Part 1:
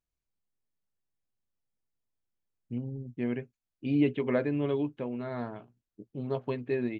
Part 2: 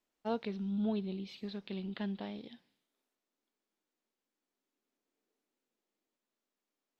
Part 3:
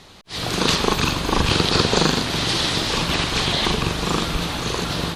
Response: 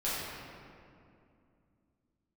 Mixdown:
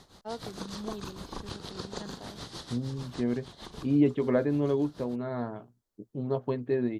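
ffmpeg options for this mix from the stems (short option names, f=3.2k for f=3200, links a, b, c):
-filter_complex "[0:a]volume=2.5dB,asplit=2[a][b];[1:a]highpass=f=470:p=1,volume=0.5dB[c];[2:a]acompressor=threshold=-37dB:ratio=2,tremolo=f=6.6:d=0.76,volume=-6dB[d];[b]apad=whole_len=227495[e];[d][e]sidechaincompress=threshold=-35dB:ratio=6:attack=36:release=590[f];[a][c][f]amix=inputs=3:normalize=0,equalizer=f=2.5k:t=o:w=0.76:g=-11"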